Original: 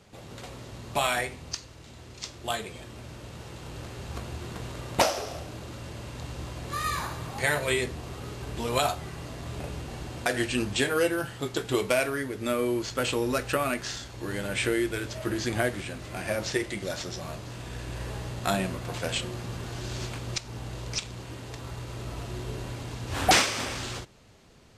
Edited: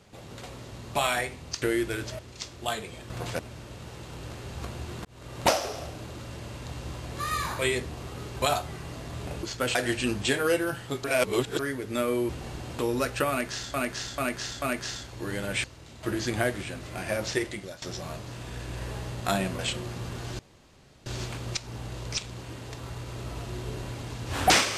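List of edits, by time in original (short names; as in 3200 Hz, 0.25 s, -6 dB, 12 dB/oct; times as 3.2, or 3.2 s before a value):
1.62–2.01 swap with 14.65–15.22
4.58–4.96 fade in
7.12–7.65 cut
8.48–8.75 cut
9.76–10.26 swap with 12.8–13.12
11.55–12.1 reverse
13.63–14.07 loop, 4 plays
16.62–17.01 fade out, to -17.5 dB
18.78–19.07 move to 2.92
19.87 insert room tone 0.67 s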